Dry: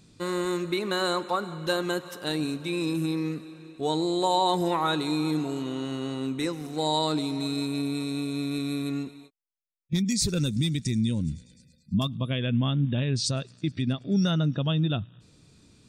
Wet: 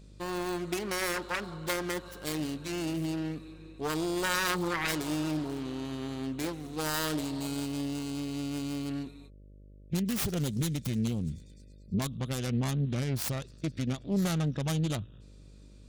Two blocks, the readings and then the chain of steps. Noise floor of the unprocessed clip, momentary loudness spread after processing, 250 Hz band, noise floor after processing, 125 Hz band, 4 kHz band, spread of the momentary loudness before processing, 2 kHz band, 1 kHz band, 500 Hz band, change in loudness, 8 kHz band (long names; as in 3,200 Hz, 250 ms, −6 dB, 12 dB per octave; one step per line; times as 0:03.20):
−60 dBFS, 7 LU, −5.0 dB, −52 dBFS, −4.5 dB, −7.0 dB, 7 LU, +0.5 dB, −8.0 dB, −6.0 dB, −5.0 dB, −1.5 dB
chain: phase distortion by the signal itself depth 0.48 ms
hum with harmonics 50 Hz, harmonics 12, −48 dBFS −7 dB per octave
level −4.5 dB